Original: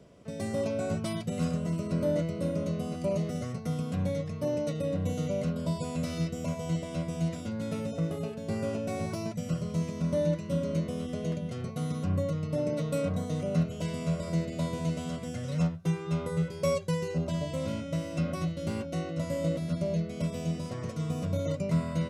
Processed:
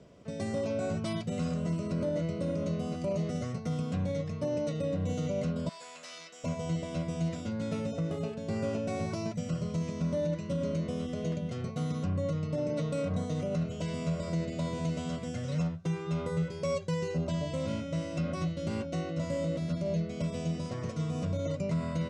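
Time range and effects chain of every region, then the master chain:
5.69–6.44 s: high-pass 1 kHz + transformer saturation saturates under 2.7 kHz
whole clip: low-pass 8.1 kHz 24 dB/octave; peak limiter -23.5 dBFS

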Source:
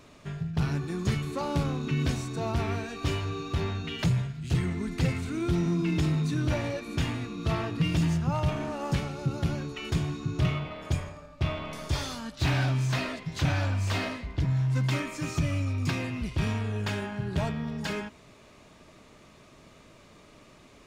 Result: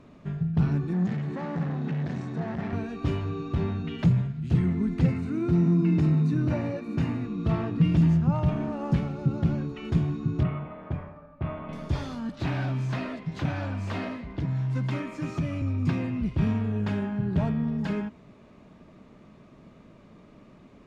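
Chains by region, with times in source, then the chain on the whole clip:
0.93–2.73 s: hard clipper -34 dBFS + cabinet simulation 110–7900 Hz, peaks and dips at 170 Hz +9 dB, 760 Hz +5 dB, 1.8 kHz +10 dB + flutter echo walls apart 11.5 m, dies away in 0.23 s
5.06–7.25 s: high-pass 83 Hz + band-stop 3.3 kHz, Q 6.3
10.43–11.69 s: low-pass 1.4 kHz + tilt shelf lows -6 dB, about 720 Hz
12.29–15.62 s: bass shelf 200 Hz -8 dB + three bands compressed up and down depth 40%
whole clip: low-pass 1.3 kHz 6 dB/octave; peaking EQ 200 Hz +8 dB 0.97 oct

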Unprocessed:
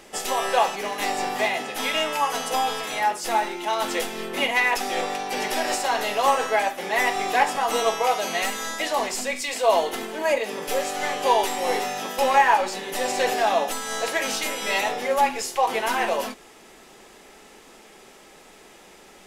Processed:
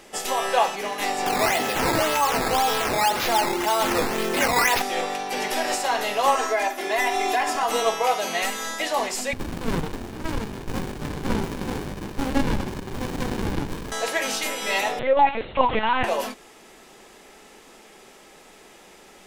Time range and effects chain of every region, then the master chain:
1.26–4.82 s: decimation with a swept rate 10× 1.9 Hz + level flattener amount 50%
6.35–7.63 s: comb 2.9 ms, depth 87% + compression 3:1, threshold -19 dBFS
9.33–13.92 s: treble shelf 3.9 kHz +7.5 dB + feedback echo behind a high-pass 69 ms, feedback 65%, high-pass 1.8 kHz, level -5 dB + sliding maximum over 65 samples
14.99–16.04 s: comb 2.1 ms, depth 85% + LPC vocoder at 8 kHz pitch kept
whole clip: none

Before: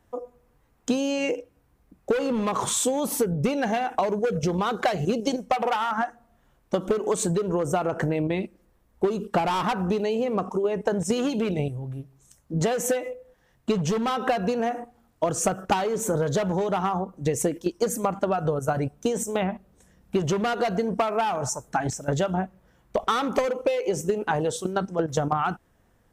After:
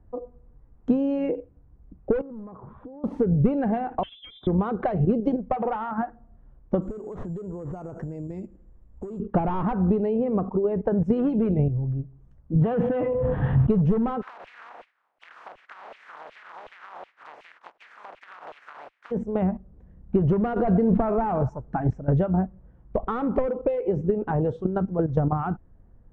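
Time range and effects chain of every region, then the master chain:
2.21–3.04 s: low-pass 1.6 kHz 24 dB/octave + compression, threshold -41 dBFS
4.03–4.47 s: peaking EQ 2.8 kHz -9.5 dB 1.2 oct + frequency inversion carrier 3.7 kHz
6.82–9.20 s: compression 5:1, threshold -35 dBFS + careless resampling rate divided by 6×, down none, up zero stuff
12.55–13.70 s: partial rectifier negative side -3 dB + cabinet simulation 110–3500 Hz, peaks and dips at 130 Hz +9 dB, 190 Hz -4 dB, 360 Hz -9 dB, 580 Hz -7 dB, 2.1 kHz -5 dB, 3.2 kHz +4 dB + level flattener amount 100%
14.21–19.10 s: spectral contrast reduction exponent 0.13 + compression 4:1, threshold -31 dBFS + LFO high-pass saw down 2.7 Hz 590–2800 Hz
20.56–21.43 s: one-bit delta coder 64 kbps, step -41 dBFS + level flattener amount 70%
whole clip: low-pass 1.8 kHz 12 dB/octave; tilt EQ -4 dB/octave; trim -4.5 dB

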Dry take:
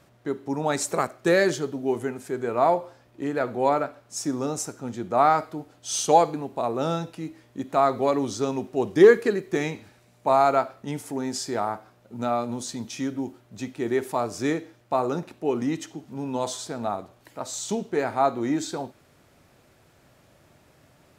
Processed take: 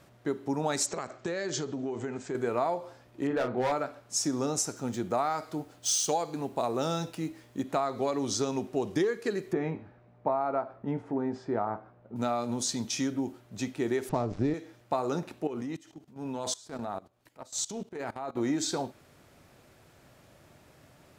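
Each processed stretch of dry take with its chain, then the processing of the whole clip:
0.86–2.35 s: steep low-pass 8 kHz 96 dB/octave + compression 12:1, threshold -29 dBFS
3.27–3.72 s: low-pass 2.6 kHz + hard clipper -20 dBFS + doubling 32 ms -6.5 dB
4.76–7.62 s: median filter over 3 samples + treble shelf 6.7 kHz +7.5 dB
9.53–12.16 s: low-pass 1.3 kHz + doubling 18 ms -12 dB
14.09–14.54 s: dead-time distortion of 0.088 ms + low-pass 8 kHz 24 dB/octave + tilt EQ -4 dB/octave
15.47–18.37 s: level held to a coarse grid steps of 17 dB + transient shaper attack -10 dB, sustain -5 dB
whole clip: dynamic bell 5.5 kHz, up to +6 dB, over -47 dBFS, Q 0.96; compression 10:1, threshold -25 dBFS

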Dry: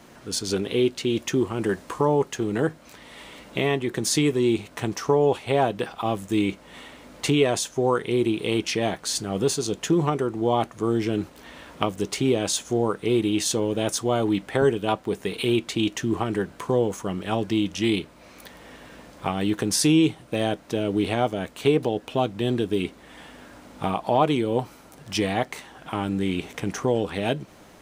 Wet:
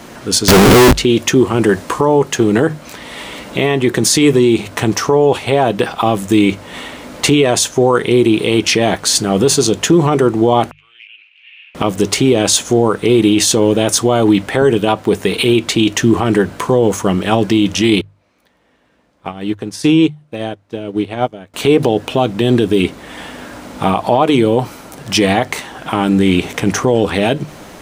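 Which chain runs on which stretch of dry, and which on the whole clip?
0.48–0.93 s: tilt EQ -2 dB/octave + Schmitt trigger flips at -36.5 dBFS
10.71–11.75 s: Butterworth band-pass 2.6 kHz, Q 4.6 + compression 12:1, threshold -48 dBFS
18.01–21.54 s: treble shelf 6.6 kHz -8 dB + upward expansion 2.5:1, over -33 dBFS
whole clip: hum notches 50/100/150 Hz; loudness maximiser +15.5 dB; trim -1 dB

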